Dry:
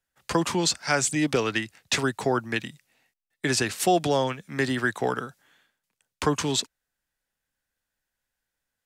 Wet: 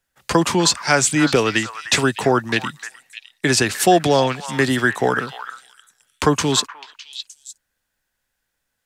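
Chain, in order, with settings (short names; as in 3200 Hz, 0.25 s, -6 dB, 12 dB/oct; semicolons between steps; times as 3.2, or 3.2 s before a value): delay with a stepping band-pass 0.304 s, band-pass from 1300 Hz, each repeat 1.4 oct, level -7 dB; gain +7.5 dB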